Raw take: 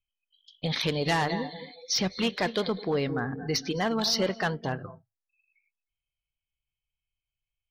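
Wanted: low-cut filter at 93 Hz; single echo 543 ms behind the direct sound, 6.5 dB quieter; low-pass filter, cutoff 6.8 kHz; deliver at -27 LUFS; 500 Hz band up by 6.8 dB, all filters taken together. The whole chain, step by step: high-pass 93 Hz; low-pass 6.8 kHz; peaking EQ 500 Hz +8 dB; delay 543 ms -6.5 dB; trim -2 dB

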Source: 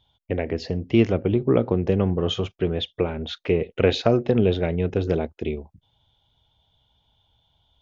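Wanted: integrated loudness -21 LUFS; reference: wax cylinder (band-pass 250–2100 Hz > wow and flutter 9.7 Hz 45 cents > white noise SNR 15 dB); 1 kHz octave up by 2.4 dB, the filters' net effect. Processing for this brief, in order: band-pass 250–2100 Hz; peaking EQ 1 kHz +4 dB; wow and flutter 9.7 Hz 45 cents; white noise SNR 15 dB; trim +4 dB

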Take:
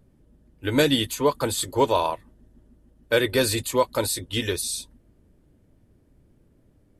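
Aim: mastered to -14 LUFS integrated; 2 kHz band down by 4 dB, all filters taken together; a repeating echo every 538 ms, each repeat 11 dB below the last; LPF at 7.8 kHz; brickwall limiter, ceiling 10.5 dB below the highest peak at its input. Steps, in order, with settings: low-pass 7.8 kHz; peaking EQ 2 kHz -5.5 dB; peak limiter -19.5 dBFS; feedback delay 538 ms, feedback 28%, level -11 dB; trim +16.5 dB

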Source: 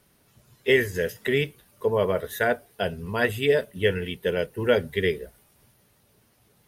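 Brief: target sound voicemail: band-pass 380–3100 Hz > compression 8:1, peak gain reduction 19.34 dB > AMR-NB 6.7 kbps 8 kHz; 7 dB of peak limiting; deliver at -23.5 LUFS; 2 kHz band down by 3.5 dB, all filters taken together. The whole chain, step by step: peaking EQ 2 kHz -3.5 dB; peak limiter -15.5 dBFS; band-pass 380–3100 Hz; compression 8:1, threshold -41 dBFS; trim +23 dB; AMR-NB 6.7 kbps 8 kHz

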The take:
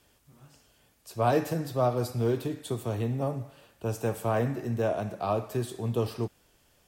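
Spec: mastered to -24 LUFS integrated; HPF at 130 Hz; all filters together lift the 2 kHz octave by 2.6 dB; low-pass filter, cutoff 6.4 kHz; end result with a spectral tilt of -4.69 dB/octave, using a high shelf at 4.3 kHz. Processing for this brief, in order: high-pass 130 Hz; low-pass 6.4 kHz; peaking EQ 2 kHz +4.5 dB; treble shelf 4.3 kHz -5 dB; trim +7 dB

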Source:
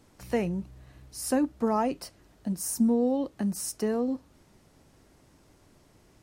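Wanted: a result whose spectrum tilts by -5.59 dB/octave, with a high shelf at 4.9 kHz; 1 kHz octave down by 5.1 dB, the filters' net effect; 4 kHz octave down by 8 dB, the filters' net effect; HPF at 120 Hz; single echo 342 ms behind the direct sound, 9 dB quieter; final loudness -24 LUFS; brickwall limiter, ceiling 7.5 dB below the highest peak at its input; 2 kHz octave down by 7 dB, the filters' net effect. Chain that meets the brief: high-pass 120 Hz; peaking EQ 1 kHz -5.5 dB; peaking EQ 2 kHz -4.5 dB; peaking EQ 4 kHz -6 dB; treble shelf 4.9 kHz -7 dB; peak limiter -24 dBFS; delay 342 ms -9 dB; trim +10 dB

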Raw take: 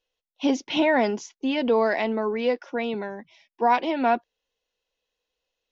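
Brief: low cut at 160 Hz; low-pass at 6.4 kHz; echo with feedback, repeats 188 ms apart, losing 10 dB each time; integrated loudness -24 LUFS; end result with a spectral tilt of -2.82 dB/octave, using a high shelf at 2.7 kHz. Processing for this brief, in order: high-pass 160 Hz; low-pass 6.4 kHz; treble shelf 2.7 kHz -6.5 dB; feedback delay 188 ms, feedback 32%, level -10 dB; trim +1 dB

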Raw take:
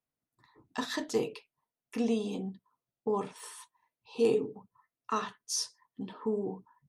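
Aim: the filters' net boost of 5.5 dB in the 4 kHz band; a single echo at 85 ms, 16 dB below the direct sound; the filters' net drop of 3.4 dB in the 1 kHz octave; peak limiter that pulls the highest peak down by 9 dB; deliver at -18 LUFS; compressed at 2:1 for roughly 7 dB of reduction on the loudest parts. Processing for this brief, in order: peaking EQ 1 kHz -4.5 dB; peaking EQ 4 kHz +7.5 dB; compression 2:1, threshold -35 dBFS; peak limiter -31.5 dBFS; delay 85 ms -16 dB; trim +24.5 dB

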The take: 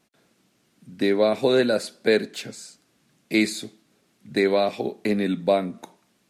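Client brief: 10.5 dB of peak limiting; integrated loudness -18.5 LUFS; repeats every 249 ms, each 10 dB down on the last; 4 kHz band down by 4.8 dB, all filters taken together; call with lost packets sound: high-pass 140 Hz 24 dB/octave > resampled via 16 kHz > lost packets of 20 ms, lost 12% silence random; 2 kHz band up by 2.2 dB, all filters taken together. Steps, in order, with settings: peaking EQ 2 kHz +4 dB; peaking EQ 4 kHz -6 dB; peak limiter -18 dBFS; high-pass 140 Hz 24 dB/octave; feedback delay 249 ms, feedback 32%, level -10 dB; resampled via 16 kHz; lost packets of 20 ms, lost 12% silence random; trim +11 dB

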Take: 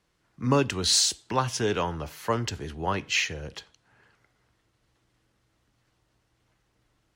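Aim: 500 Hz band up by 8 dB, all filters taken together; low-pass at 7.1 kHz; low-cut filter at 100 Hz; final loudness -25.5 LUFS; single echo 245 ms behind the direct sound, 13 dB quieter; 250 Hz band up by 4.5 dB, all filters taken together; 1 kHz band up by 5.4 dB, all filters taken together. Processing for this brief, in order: high-pass 100 Hz; low-pass 7.1 kHz; peaking EQ 250 Hz +3 dB; peaking EQ 500 Hz +8 dB; peaking EQ 1 kHz +4 dB; delay 245 ms -13 dB; trim -2.5 dB

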